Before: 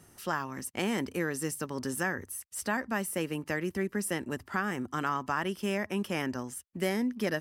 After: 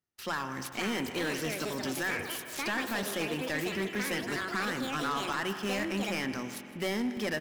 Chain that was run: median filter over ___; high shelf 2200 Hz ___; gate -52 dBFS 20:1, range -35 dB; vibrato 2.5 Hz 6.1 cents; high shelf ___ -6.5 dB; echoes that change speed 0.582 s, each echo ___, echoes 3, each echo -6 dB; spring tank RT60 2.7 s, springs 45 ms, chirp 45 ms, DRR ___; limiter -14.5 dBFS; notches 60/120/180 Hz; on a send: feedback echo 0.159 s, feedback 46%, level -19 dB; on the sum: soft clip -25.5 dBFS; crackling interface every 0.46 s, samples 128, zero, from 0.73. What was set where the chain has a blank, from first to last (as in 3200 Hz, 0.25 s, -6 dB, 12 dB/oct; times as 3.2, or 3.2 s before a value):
5 samples, +11 dB, 9600 Hz, +5 st, 12 dB